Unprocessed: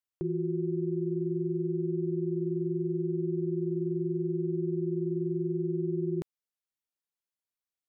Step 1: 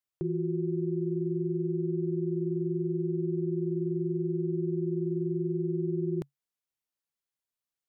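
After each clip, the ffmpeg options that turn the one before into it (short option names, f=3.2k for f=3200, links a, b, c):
-af "equalizer=f=140:t=o:w=0.24:g=5.5"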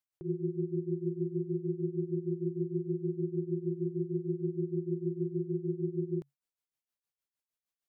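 -af "tremolo=f=6.5:d=0.81"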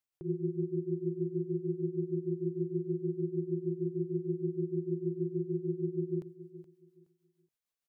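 -af "aecho=1:1:422|844|1266:0.188|0.0452|0.0108"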